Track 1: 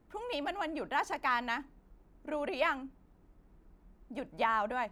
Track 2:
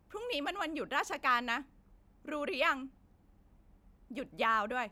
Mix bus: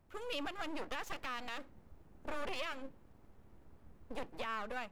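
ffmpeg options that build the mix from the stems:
-filter_complex "[0:a]alimiter=level_in=5.5dB:limit=-24dB:level=0:latency=1:release=30,volume=-5.5dB,dynaudnorm=f=200:g=7:m=8.5dB,aeval=exprs='abs(val(0))':c=same,volume=-6.5dB[a];[1:a]volume=-4dB[b];[a][b]amix=inputs=2:normalize=0,alimiter=level_in=4.5dB:limit=-24dB:level=0:latency=1:release=228,volume=-4.5dB"

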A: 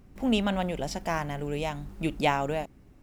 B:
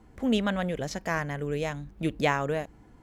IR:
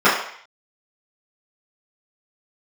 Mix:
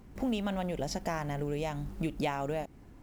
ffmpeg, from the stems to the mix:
-filter_complex "[0:a]acrusher=bits=8:mode=log:mix=0:aa=0.000001,volume=0dB,asplit=2[a][b];[1:a]volume=-4dB[c];[b]apad=whole_len=133266[d];[c][d]sidechaincompress=threshold=-31dB:ratio=8:attack=16:release=390[e];[a][e]amix=inputs=2:normalize=0,acompressor=threshold=-31dB:ratio=3"

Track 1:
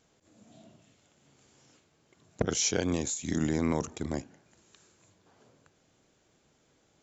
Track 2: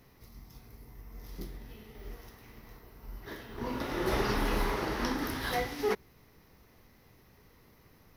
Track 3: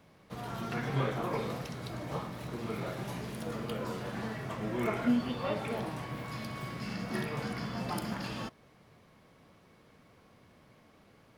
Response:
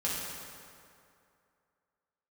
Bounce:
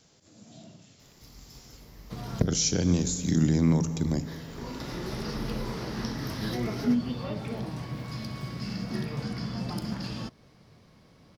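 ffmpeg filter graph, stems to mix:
-filter_complex "[0:a]equalizer=f=130:t=o:w=1.7:g=6,volume=2dB,asplit=3[a][b][c];[b]volume=-17dB[d];[1:a]acompressor=threshold=-31dB:ratio=6,adelay=1000,volume=-0.5dB[e];[2:a]lowshelf=f=330:g=8.5,adelay=1800,volume=-1.5dB[f];[c]apad=whole_len=580911[g];[f][g]sidechaincompress=threshold=-47dB:ratio=8:attack=16:release=607[h];[3:a]atrim=start_sample=2205[i];[d][i]afir=irnorm=-1:irlink=0[j];[a][e][h][j]amix=inputs=4:normalize=0,acrossover=split=330[k][l];[l]acompressor=threshold=-46dB:ratio=1.5[m];[k][m]amix=inputs=2:normalize=0,equalizer=f=5k:t=o:w=0.88:g=10.5"

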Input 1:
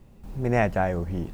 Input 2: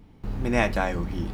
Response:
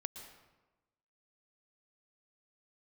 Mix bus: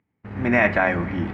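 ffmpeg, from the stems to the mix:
-filter_complex "[0:a]highpass=150,lowpass=6.2k,volume=-4dB[a];[1:a]alimiter=limit=-14.5dB:level=0:latency=1:release=14,acompressor=mode=upward:threshold=-31dB:ratio=2.5,lowpass=f=2k:t=q:w=2.9,volume=2dB,asplit=2[b][c];[c]volume=-5.5dB[d];[2:a]atrim=start_sample=2205[e];[d][e]afir=irnorm=-1:irlink=0[f];[a][b][f]amix=inputs=3:normalize=0,highpass=f=79:w=0.5412,highpass=f=79:w=1.3066,agate=range=-37dB:threshold=-29dB:ratio=16:detection=peak"

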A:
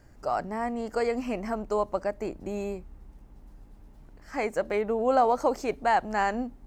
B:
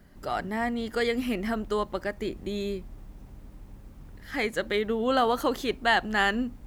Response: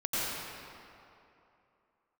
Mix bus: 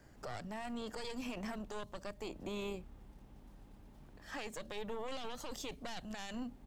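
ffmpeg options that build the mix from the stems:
-filter_complex "[0:a]aeval=exprs='0.282*(cos(1*acos(clip(val(0)/0.282,-1,1)))-cos(1*PI/2))+0.0562*(cos(6*acos(clip(val(0)/0.282,-1,1)))-cos(6*PI/2))':c=same,volume=-2.5dB[a];[1:a]equalizer=f=3.3k:w=1.3:g=11,adelay=0.5,volume=-17.5dB[b];[a][b]amix=inputs=2:normalize=0,acrossover=split=200|3000[c][d][e];[d]acompressor=threshold=-38dB:ratio=6[f];[c][f][e]amix=inputs=3:normalize=0,lowshelf=f=100:g=-8,alimiter=level_in=10dB:limit=-24dB:level=0:latency=1:release=17,volume=-10dB"

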